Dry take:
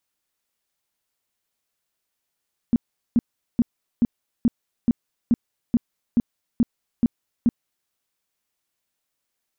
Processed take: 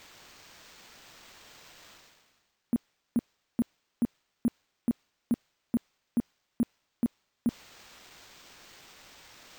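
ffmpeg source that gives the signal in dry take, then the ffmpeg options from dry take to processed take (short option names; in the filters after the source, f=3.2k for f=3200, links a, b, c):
-f lavfi -i "aevalsrc='0.224*sin(2*PI*236*mod(t,0.43))*lt(mod(t,0.43),7/236)':d=5.16:s=44100"
-af "highpass=f=490:p=1,areverse,acompressor=mode=upward:threshold=-32dB:ratio=2.5,areverse,acrusher=samples=4:mix=1:aa=0.000001"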